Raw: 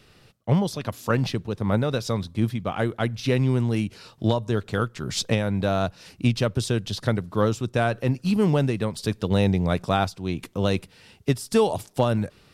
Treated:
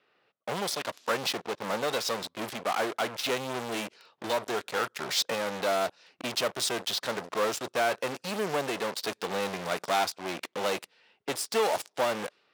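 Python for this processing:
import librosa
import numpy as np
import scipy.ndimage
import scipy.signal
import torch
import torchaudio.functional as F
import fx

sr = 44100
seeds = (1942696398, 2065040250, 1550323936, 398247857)

p1 = fx.env_lowpass(x, sr, base_hz=2300.0, full_db=-18.5)
p2 = fx.cheby_harmonics(p1, sr, harmonics=(2,), levels_db=(-11,), full_scale_db=-7.0)
p3 = fx.fuzz(p2, sr, gain_db=39.0, gate_db=-37.0)
p4 = p2 + F.gain(torch.from_numpy(p3), -4.0).numpy()
p5 = scipy.signal.sosfilt(scipy.signal.butter(2, 490.0, 'highpass', fs=sr, output='sos'), p4)
y = F.gain(torch.from_numpy(p5), -8.5).numpy()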